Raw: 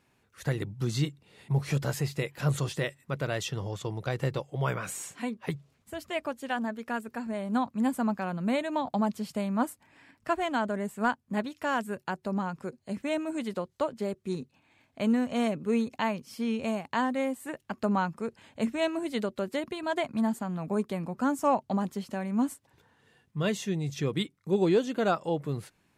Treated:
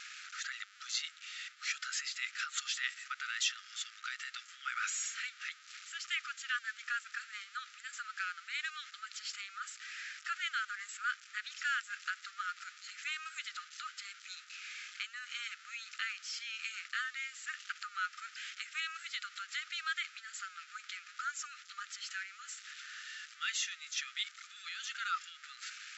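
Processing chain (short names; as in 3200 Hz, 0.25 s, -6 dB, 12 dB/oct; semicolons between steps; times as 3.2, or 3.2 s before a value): zero-crossing step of -41.5 dBFS; limiter -22 dBFS, peak gain reduction 7 dB; brick-wall FIR band-pass 1200–7700 Hz; gain +2.5 dB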